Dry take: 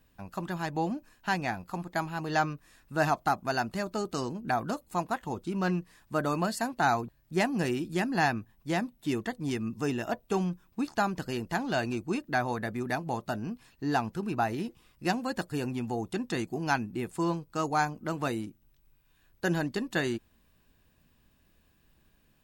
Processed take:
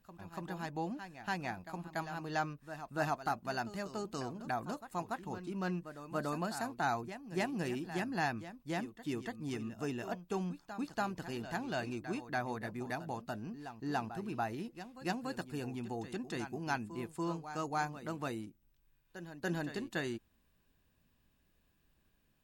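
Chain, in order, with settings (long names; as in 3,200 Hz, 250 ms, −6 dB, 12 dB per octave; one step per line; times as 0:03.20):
backwards echo 287 ms −11.5 dB
level −8 dB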